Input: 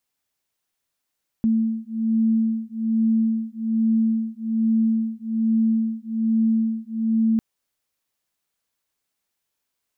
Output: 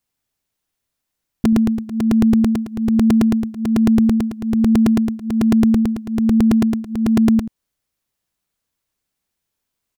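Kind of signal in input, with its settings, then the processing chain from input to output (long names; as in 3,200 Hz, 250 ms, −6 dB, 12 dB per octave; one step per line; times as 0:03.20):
two tones that beat 223 Hz, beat 1.2 Hz, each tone −21.5 dBFS 5.95 s
low-shelf EQ 230 Hz +10.5 dB
on a send: single-tap delay 86 ms −11.5 dB
on the sum: regular buffer underruns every 0.11 s, samples 128, repeat, from 0:00.68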